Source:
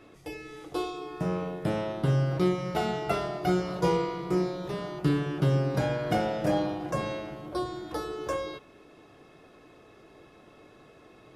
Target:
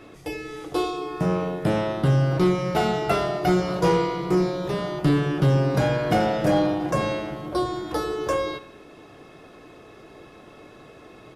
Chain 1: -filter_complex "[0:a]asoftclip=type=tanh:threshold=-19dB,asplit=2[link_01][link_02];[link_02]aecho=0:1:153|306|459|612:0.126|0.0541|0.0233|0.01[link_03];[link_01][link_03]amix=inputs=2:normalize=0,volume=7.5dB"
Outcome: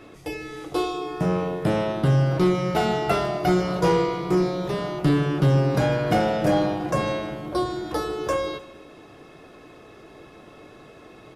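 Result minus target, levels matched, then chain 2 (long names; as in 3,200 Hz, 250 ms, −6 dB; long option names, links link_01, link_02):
echo 61 ms late
-filter_complex "[0:a]asoftclip=type=tanh:threshold=-19dB,asplit=2[link_01][link_02];[link_02]aecho=0:1:92|184|276|368:0.126|0.0541|0.0233|0.01[link_03];[link_01][link_03]amix=inputs=2:normalize=0,volume=7.5dB"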